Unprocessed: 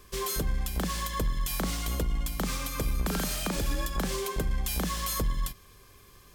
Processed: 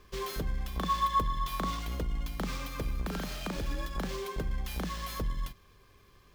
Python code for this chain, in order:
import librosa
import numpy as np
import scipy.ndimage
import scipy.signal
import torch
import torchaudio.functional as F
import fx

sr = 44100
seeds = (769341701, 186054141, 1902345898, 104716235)

y = scipy.signal.medfilt(x, 5)
y = fx.rider(y, sr, range_db=10, speed_s=0.5)
y = fx.small_body(y, sr, hz=(1100.0, 3500.0), ring_ms=45, db=14, at=(0.68, 1.79))
y = y * 10.0 ** (-4.0 / 20.0)